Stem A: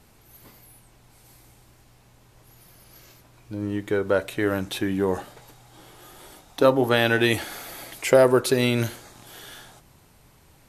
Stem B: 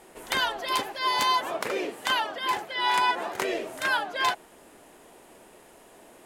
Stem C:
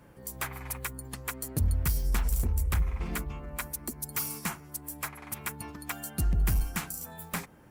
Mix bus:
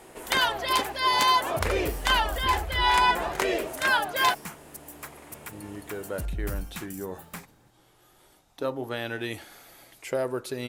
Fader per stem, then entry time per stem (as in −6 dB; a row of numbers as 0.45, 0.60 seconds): −12.5, +2.5, −6.0 decibels; 2.00, 0.00, 0.00 seconds